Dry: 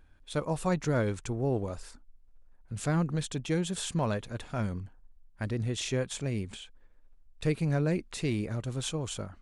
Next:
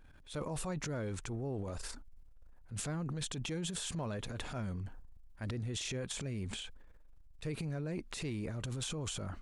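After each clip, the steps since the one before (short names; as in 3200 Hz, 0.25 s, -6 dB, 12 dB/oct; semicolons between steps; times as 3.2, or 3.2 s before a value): transient shaper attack -7 dB, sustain +9 dB; compressor, threshold -34 dBFS, peak gain reduction 10 dB; gain -1.5 dB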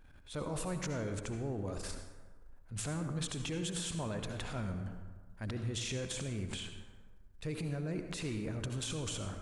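reverb RT60 1.4 s, pre-delay 57 ms, DRR 6 dB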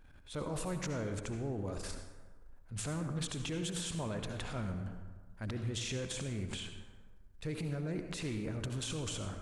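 Doppler distortion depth 0.14 ms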